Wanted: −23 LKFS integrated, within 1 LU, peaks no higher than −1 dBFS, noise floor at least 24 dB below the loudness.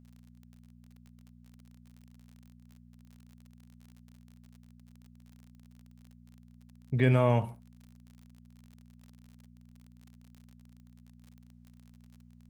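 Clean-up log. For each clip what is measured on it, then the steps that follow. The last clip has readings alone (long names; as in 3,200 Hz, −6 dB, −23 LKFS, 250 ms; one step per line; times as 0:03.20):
crackle rate 43 per second; mains hum 60 Hz; hum harmonics up to 240 Hz; level of the hum −53 dBFS; integrated loudness −27.5 LKFS; sample peak −11.5 dBFS; target loudness −23.0 LKFS
→ click removal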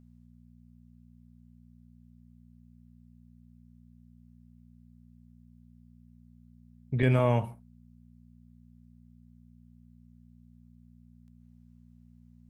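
crackle rate 0.080 per second; mains hum 60 Hz; hum harmonics up to 240 Hz; level of the hum −54 dBFS
→ hum removal 60 Hz, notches 4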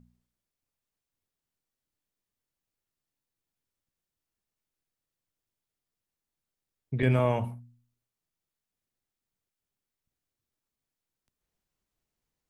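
mains hum none found; integrated loudness −28.0 LKFS; sample peak −12.0 dBFS; target loudness −23.0 LKFS
→ level +5 dB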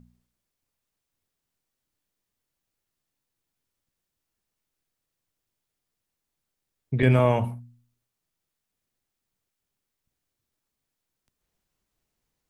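integrated loudness −23.0 LKFS; sample peak −7.0 dBFS; background noise floor −84 dBFS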